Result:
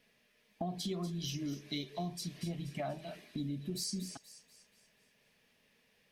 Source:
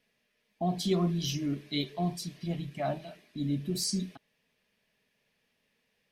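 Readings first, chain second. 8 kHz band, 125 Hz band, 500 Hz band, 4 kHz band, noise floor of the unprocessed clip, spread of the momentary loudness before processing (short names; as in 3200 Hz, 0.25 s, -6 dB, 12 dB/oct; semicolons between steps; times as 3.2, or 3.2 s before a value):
-5.5 dB, -7.5 dB, -8.0 dB, -5.5 dB, -77 dBFS, 9 LU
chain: compressor 6:1, threshold -41 dBFS, peak gain reduction 17 dB; on a send: thin delay 0.24 s, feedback 44%, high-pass 5100 Hz, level -8 dB; on the sum: gain +4.5 dB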